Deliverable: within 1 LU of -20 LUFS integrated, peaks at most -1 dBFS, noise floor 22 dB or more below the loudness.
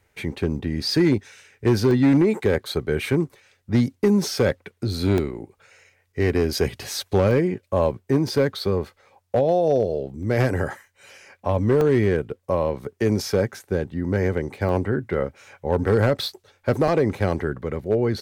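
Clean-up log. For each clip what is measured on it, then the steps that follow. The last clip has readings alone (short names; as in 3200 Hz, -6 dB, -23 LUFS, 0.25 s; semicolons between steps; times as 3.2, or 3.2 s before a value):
clipped 0.8%; flat tops at -11.5 dBFS; dropouts 7; longest dropout 1.2 ms; loudness -22.5 LUFS; peak -11.5 dBFS; loudness target -20.0 LUFS
-> clip repair -11.5 dBFS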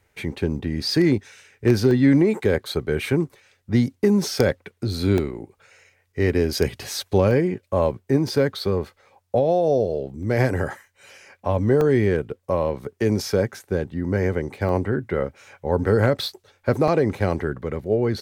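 clipped 0.0%; dropouts 7; longest dropout 1.2 ms
-> interpolate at 1.91/5.18/7.31/10.23/11.81/14.69/16.88, 1.2 ms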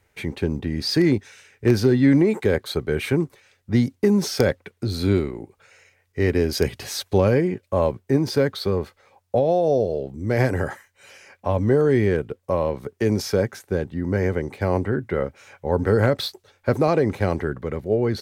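dropouts 0; loudness -22.5 LUFS; peak -2.5 dBFS; loudness target -20.0 LUFS
-> gain +2.5 dB; limiter -1 dBFS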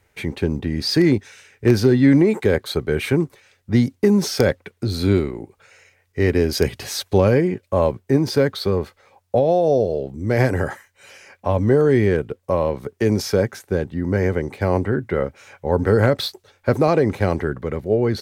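loudness -20.0 LUFS; peak -1.0 dBFS; noise floor -65 dBFS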